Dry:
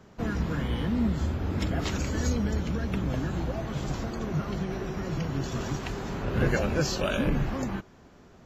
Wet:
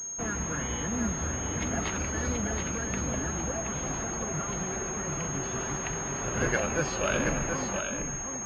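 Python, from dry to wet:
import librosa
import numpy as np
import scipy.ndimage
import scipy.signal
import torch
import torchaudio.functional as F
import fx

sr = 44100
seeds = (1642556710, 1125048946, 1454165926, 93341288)

p1 = fx.low_shelf(x, sr, hz=470.0, db=-11.0)
p2 = p1 + fx.echo_single(p1, sr, ms=726, db=-5.5, dry=0)
p3 = fx.pwm(p2, sr, carrier_hz=6500.0)
y = F.gain(torch.from_numpy(p3), 3.5).numpy()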